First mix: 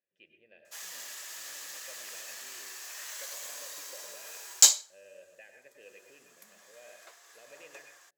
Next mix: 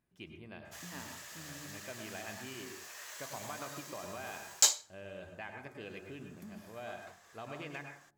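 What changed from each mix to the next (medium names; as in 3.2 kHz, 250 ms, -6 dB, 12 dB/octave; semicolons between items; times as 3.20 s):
speech: remove vowel filter e; master: add treble shelf 2.4 kHz -8 dB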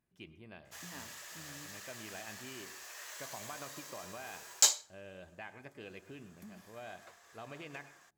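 speech: send -11.5 dB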